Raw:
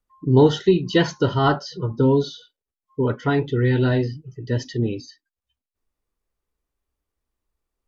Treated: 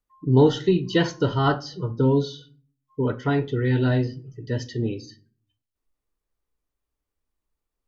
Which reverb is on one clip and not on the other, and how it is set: simulated room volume 330 m³, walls furnished, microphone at 0.44 m; trim -3 dB

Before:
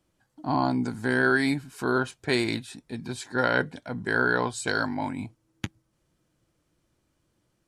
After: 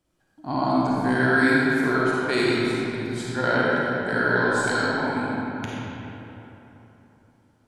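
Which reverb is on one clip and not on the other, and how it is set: algorithmic reverb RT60 3.5 s, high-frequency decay 0.55×, pre-delay 10 ms, DRR -6.5 dB; trim -3 dB

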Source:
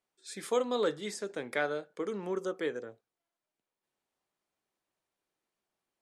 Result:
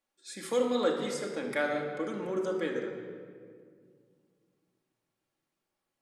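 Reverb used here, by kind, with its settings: simulated room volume 3600 m³, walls mixed, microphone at 2.3 m; trim -1 dB

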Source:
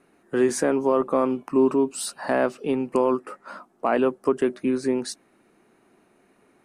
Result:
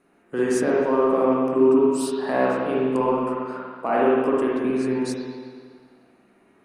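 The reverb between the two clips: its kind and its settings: spring tank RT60 1.8 s, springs 46/56 ms, chirp 80 ms, DRR -5 dB; trim -4 dB

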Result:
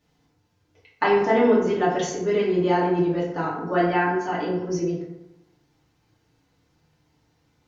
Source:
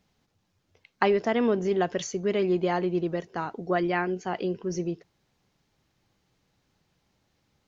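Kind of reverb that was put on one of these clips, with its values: FDN reverb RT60 0.91 s, low-frequency decay 1×, high-frequency decay 0.5×, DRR -8 dB; trim -4 dB

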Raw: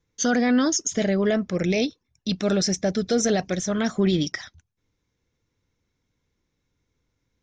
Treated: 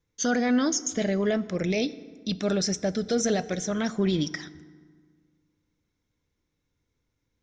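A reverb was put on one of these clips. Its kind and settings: FDN reverb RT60 1.7 s, low-frequency decay 1.25×, high-frequency decay 0.6×, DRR 15.5 dB; trim -3.5 dB

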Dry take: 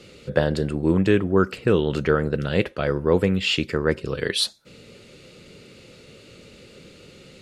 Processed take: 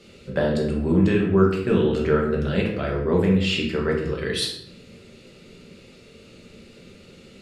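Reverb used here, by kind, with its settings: simulated room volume 190 m³, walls mixed, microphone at 1.2 m; trim -5.5 dB

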